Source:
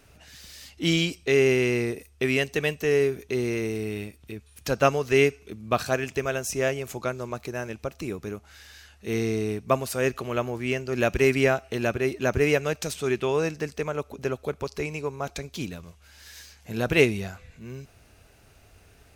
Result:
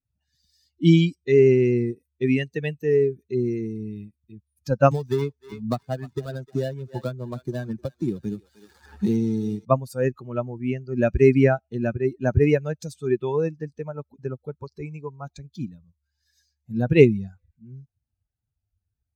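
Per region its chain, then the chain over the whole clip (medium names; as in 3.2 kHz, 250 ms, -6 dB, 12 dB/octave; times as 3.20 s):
4.91–9.65 s: dead-time distortion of 0.21 ms + thinning echo 304 ms, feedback 39%, high-pass 620 Hz, level -11 dB + three bands compressed up and down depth 100%
whole clip: expander on every frequency bin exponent 2; high-pass 99 Hz; tilt EQ -3.5 dB/octave; trim +3.5 dB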